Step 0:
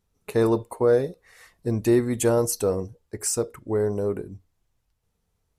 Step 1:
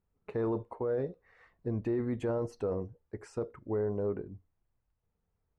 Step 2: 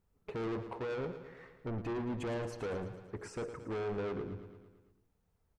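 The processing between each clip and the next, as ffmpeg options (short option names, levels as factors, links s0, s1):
-af "lowpass=1800,alimiter=limit=0.119:level=0:latency=1:release=13,volume=0.473"
-af "asoftclip=type=tanh:threshold=0.0112,aecho=1:1:112|224|336|448|560|672|784:0.282|0.169|0.101|0.0609|0.0365|0.0219|0.0131,volume=1.58"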